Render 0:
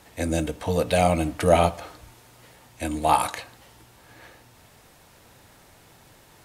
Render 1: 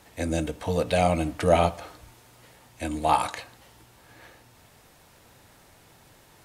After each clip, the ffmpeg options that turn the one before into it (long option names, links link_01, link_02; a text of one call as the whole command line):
ffmpeg -i in.wav -filter_complex "[0:a]acrossover=split=9300[link_01][link_02];[link_02]acompressor=threshold=-51dB:ratio=4:attack=1:release=60[link_03];[link_01][link_03]amix=inputs=2:normalize=0,volume=-2dB" out.wav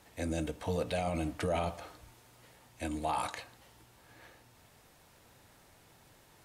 ffmpeg -i in.wav -af "alimiter=limit=-17.5dB:level=0:latency=1:release=22,volume=-6dB" out.wav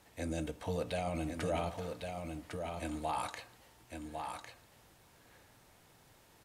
ffmpeg -i in.wav -af "aecho=1:1:1103:0.531,volume=-3dB" out.wav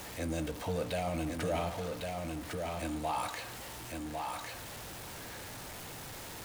ffmpeg -i in.wav -af "aeval=exprs='val(0)+0.5*0.01*sgn(val(0))':channel_layout=same" out.wav